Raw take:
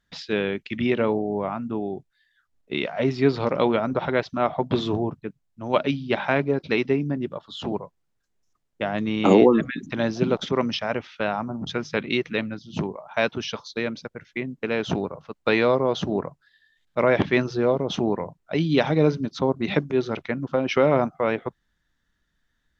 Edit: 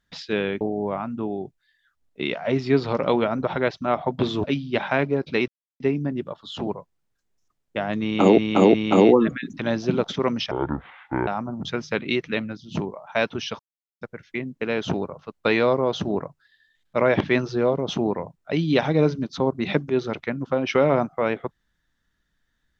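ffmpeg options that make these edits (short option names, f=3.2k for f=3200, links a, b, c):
-filter_complex "[0:a]asplit=10[a][b][c][d][e][f][g][h][i][j];[a]atrim=end=0.612[k];[b]atrim=start=1.128:end=4.962[l];[c]atrim=start=5.808:end=6.85,asetpts=PTS-STARTPTS,afade=t=out:st=1.038:d=0.004:c=hsin,apad=pad_dur=0.32[m];[d]atrim=start=6.85:end=9.432,asetpts=PTS-STARTPTS,afade=t=in:d=0.004:c=hsin[n];[e]atrim=start=9.068:end=9.432[o];[f]atrim=start=9.068:end=10.844[p];[g]atrim=start=10.84:end=11.29,asetpts=PTS-STARTPTS,asetrate=26019,aresample=44100[q];[h]atrim=start=11.286:end=13.61,asetpts=PTS-STARTPTS,afade=t=out:st=2.32:d=0.004:c=hsin[r];[i]atrim=start=13.61:end=14.03,asetpts=PTS-STARTPTS,volume=0[s];[j]atrim=start=14.03,asetpts=PTS-STARTPTS,afade=t=in:d=0.004:c=hsin[t];[k][l]acrossfade=d=0.004:c1=hsin:c2=hsin[u];[m][n]concat=n=2:v=0:a=1[v];[u][v]acrossfade=d=0.004:c1=hsin:c2=hsin[w];[w][o]acrossfade=d=0.004:c1=hsin:c2=hsin[x];[x][p]acrossfade=d=0.004:c1=hsin:c2=hsin[y];[y][q]acrossfade=d=0.004:c1=hsin:c2=hsin[z];[r][s][t]concat=n=3:v=0:a=1[aa];[z][aa]acrossfade=d=0.004:c1=hsin:c2=hsin"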